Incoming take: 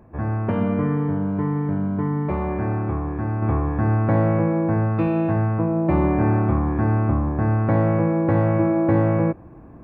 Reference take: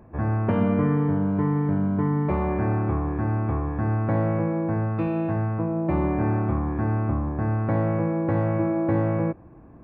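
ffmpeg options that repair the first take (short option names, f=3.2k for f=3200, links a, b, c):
-af "asetnsamples=n=441:p=0,asendcmd='3.42 volume volume -4.5dB',volume=0dB"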